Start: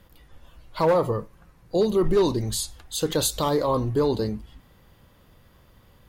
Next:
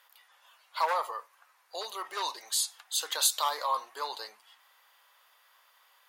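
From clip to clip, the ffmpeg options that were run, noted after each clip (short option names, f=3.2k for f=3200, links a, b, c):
-af "highpass=f=850:w=0.5412,highpass=f=850:w=1.3066"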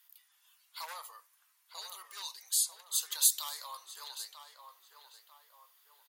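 -filter_complex "[0:a]aderivative,asplit=2[a][b];[b]adelay=944,lowpass=f=1.9k:p=1,volume=-7dB,asplit=2[c][d];[d]adelay=944,lowpass=f=1.9k:p=1,volume=0.48,asplit=2[e][f];[f]adelay=944,lowpass=f=1.9k:p=1,volume=0.48,asplit=2[g][h];[h]adelay=944,lowpass=f=1.9k:p=1,volume=0.48,asplit=2[i][j];[j]adelay=944,lowpass=f=1.9k:p=1,volume=0.48,asplit=2[k][l];[l]adelay=944,lowpass=f=1.9k:p=1,volume=0.48[m];[a][c][e][g][i][k][m]amix=inputs=7:normalize=0"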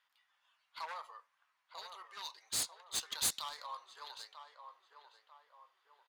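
-af "adynamicsmooth=sensitivity=6:basefreq=2.4k,asoftclip=type=tanh:threshold=-29dB,volume=2dB"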